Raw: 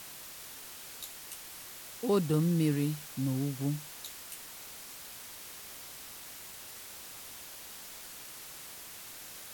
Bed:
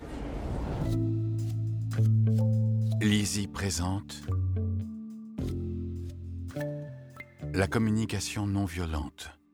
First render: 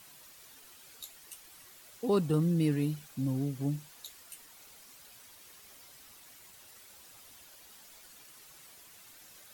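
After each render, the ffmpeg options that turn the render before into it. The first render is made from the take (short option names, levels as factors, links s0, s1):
-af "afftdn=nr=10:nf=-47"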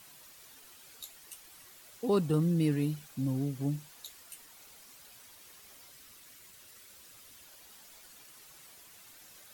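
-filter_complex "[0:a]asettb=1/sr,asplit=3[s0][s1][s2];[s0]atrim=end=5.904[s3];[s1]atrim=start=5.9:end=7.43,asetpts=PTS-STARTPTS,afade=t=in:d=0.004:c=qsin,afade=t=out:st=1.526:d=0.004:c=qsin,equalizer=f=810:t=o:w=0.54:g=-6.5[s4];[s2]atrim=start=7.426[s5];[s3][s4]acrossfade=d=0.004:c1=hsin:c2=qsin[s6];[s6][s5]acrossfade=d=0.004:c1=qsin:c2=hsin"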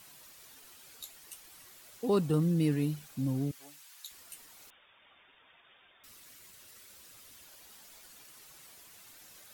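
-filter_complex "[0:a]asettb=1/sr,asplit=3[s0][s1][s2];[s0]atrim=end=3.514[s3];[s1]atrim=start=3.51:end=4.11,asetpts=PTS-STARTPTS,afade=t=in:d=0.004:c=qsin,afade=t=out:st=0.596:d=0.004:c=qsin,highpass=1200[s4];[s2]atrim=start=4.106[s5];[s3][s4]acrossfade=d=0.004:c1=hsin:c2=qsin[s6];[s6][s5]acrossfade=d=0.004:c1=qsin:c2=hsin,asettb=1/sr,asplit=3[s7][s8][s9];[s7]atrim=end=4.704[s10];[s8]atrim=start=4.7:end=6.04,asetpts=PTS-STARTPTS,afade=t=in:d=0.004:c=qsin,afade=t=out:st=1.336:d=0.004:c=qsin,lowpass=f=3100:t=q:w=0.5098,lowpass=f=3100:t=q:w=0.6013,lowpass=f=3100:t=q:w=0.9,lowpass=f=3100:t=q:w=2.563,afreqshift=-3700[s11];[s9]atrim=start=6.036[s12];[s10][s11]acrossfade=d=0.004:c1=hsin:c2=qsin[s13];[s13][s12]acrossfade=d=0.004:c1=qsin:c2=hsin"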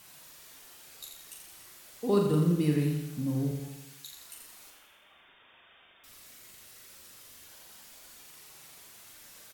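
-filter_complex "[0:a]asplit=2[s0][s1];[s1]adelay=40,volume=0.562[s2];[s0][s2]amix=inputs=2:normalize=0,aecho=1:1:84|168|252|336|420|504|588:0.501|0.286|0.163|0.0928|0.0529|0.0302|0.0172"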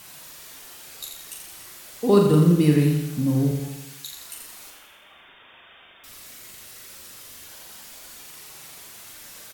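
-af "volume=2.82"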